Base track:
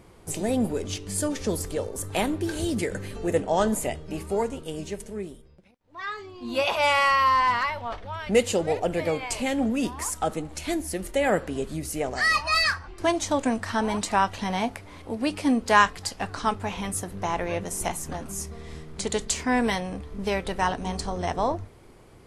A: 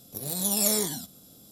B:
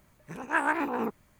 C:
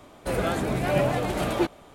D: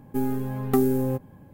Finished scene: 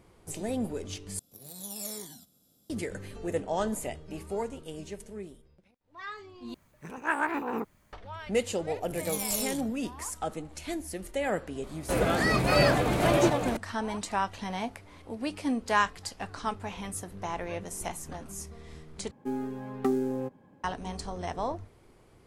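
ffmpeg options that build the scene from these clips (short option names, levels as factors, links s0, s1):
-filter_complex "[1:a]asplit=2[s0][s1];[0:a]volume=0.447[s2];[s1]afwtdn=0.0126[s3];[3:a]aecho=1:1:551:0.631[s4];[4:a]acrossover=split=180 8000:gain=0.178 1 0.1[s5][s6][s7];[s5][s6][s7]amix=inputs=3:normalize=0[s8];[s2]asplit=4[s9][s10][s11][s12];[s9]atrim=end=1.194[s13];[s0]atrim=end=1.51,asetpts=PTS-STARTPTS,volume=0.2[s14];[s10]atrim=start=2.696:end=6.544[s15];[2:a]atrim=end=1.39,asetpts=PTS-STARTPTS,volume=0.794[s16];[s11]atrim=start=7.926:end=19.114[s17];[s8]atrim=end=1.53,asetpts=PTS-STARTPTS,volume=0.562[s18];[s12]atrim=start=20.636[s19];[s3]atrim=end=1.51,asetpts=PTS-STARTPTS,volume=0.447,afade=t=in:d=0.004:c=hsin,afade=t=out:st=1.506:d=0.004:c=hsin,adelay=8680[s20];[s4]atrim=end=1.94,asetpts=PTS-STARTPTS,volume=0.944,afade=t=in:d=0.004:c=hsin,afade=t=out:st=1.936:d=0.004:c=hsin,adelay=11630[s21];[s13][s14]acrossfade=d=0.004:c1=hsin:c2=hsin[s22];[s22][s15]acrossfade=d=0.004:c1=hsin:c2=hsin[s23];[s23][s16]acrossfade=d=0.004:c1=hsin:c2=hsin[s24];[s24][s17]acrossfade=d=0.004:c1=hsin:c2=hsin[s25];[s25][s18]acrossfade=d=0.004:c1=hsin:c2=hsin[s26];[s26][s19]acrossfade=d=0.004:c1=hsin:c2=hsin[s27];[s27][s20][s21]amix=inputs=3:normalize=0"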